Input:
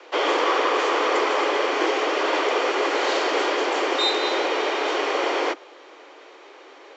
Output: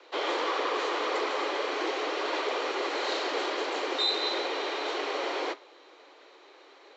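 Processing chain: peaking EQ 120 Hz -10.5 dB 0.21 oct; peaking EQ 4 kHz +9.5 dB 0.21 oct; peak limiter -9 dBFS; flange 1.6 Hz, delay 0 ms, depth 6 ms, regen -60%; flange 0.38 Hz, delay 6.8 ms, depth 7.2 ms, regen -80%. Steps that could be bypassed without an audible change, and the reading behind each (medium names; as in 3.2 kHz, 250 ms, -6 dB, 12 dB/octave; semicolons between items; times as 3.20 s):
peaking EQ 120 Hz: input has nothing below 240 Hz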